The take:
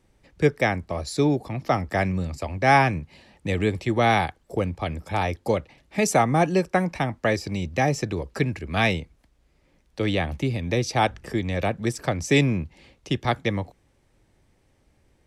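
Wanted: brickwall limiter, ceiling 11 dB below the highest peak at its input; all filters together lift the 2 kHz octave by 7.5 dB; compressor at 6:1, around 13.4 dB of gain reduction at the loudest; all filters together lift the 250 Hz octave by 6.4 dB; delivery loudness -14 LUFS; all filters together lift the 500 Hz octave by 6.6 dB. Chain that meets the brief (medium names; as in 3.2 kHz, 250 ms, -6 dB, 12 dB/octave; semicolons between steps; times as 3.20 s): peaking EQ 250 Hz +6.5 dB; peaking EQ 500 Hz +6 dB; peaking EQ 2 kHz +8.5 dB; compression 6:1, threshold -22 dBFS; trim +16.5 dB; peak limiter -2 dBFS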